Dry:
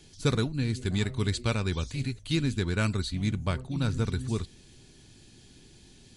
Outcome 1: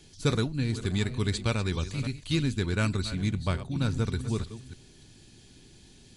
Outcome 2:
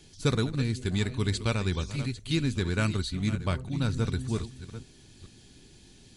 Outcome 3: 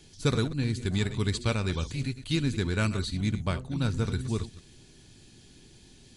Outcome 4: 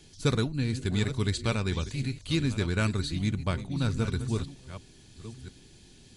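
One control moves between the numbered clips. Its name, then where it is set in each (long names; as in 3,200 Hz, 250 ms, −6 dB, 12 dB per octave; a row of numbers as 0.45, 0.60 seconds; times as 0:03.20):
delay that plays each chunk backwards, delay time: 296, 439, 107, 687 milliseconds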